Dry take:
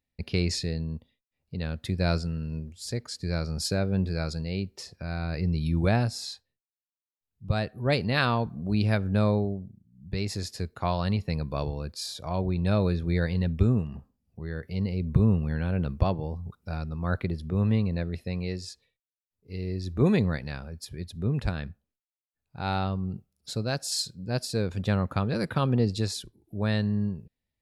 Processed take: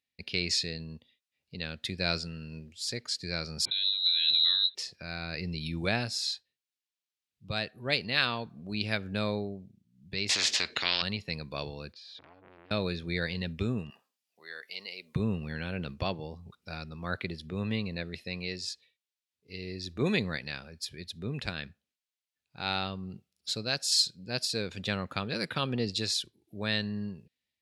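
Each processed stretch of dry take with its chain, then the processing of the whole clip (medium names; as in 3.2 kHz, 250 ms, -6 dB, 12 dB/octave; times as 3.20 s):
3.65–4.75 s: compressor with a negative ratio -34 dBFS + frequency inversion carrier 4 kHz
10.29–11.02 s: distance through air 160 m + spectrum-flattening compressor 4:1
11.93–12.71 s: compression 8:1, threshold -39 dBFS + distance through air 300 m + transformer saturation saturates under 1.1 kHz
13.90–15.16 s: high-pass 700 Hz + treble shelf 7.5 kHz +9 dB
whole clip: frequency weighting D; level rider gain up to 3 dB; trim -7.5 dB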